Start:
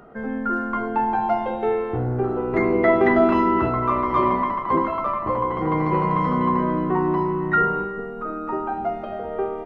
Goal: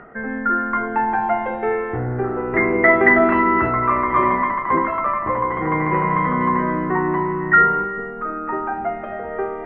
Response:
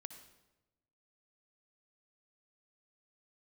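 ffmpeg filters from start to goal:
-af "areverse,acompressor=mode=upward:threshold=0.0316:ratio=2.5,areverse,lowpass=f=1900:t=q:w=4.1"

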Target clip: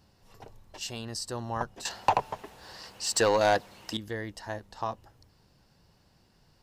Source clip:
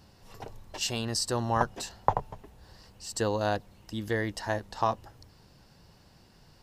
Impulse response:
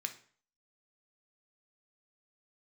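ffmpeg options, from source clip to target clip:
-filter_complex "[0:a]asettb=1/sr,asplit=3[s0][s1][s2];[s0]atrim=end=1.854[s3];[s1]atrim=start=1.85:end=3.97,asetpts=PTS-STARTPTS,afade=t=in:d=0.004:c=qsin,afade=t=out:st=2.116:d=0.004:c=qsin,asplit=2[s4][s5];[s5]highpass=f=720:p=1,volume=15.8,asoftclip=type=tanh:threshold=0.596[s6];[s4][s6]amix=inputs=2:normalize=0,lowpass=f=7300:p=1,volume=0.501[s7];[s2]atrim=start=3.966[s8];[s3][s7]acrossfade=d=0.004:c1=hsin:c2=qsin[s9];[s9][s8]acrossfade=d=0.004:c1=qsin:c2=hsin,volume=0.501"

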